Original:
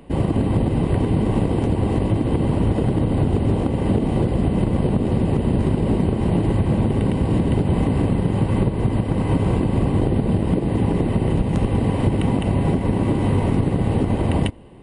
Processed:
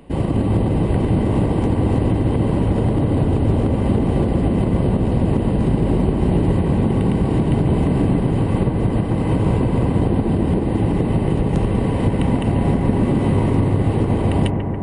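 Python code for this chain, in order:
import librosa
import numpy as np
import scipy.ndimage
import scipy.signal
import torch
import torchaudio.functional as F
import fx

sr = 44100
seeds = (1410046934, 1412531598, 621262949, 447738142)

y = x + fx.echo_bbd(x, sr, ms=141, stages=2048, feedback_pct=81, wet_db=-7.0, dry=0)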